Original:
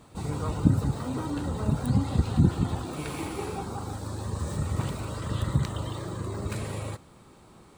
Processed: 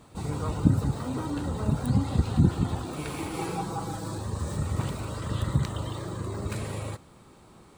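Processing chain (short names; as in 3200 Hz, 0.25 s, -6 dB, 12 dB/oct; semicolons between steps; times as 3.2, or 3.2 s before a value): 3.33–4.18 comb 6.1 ms, depth 96%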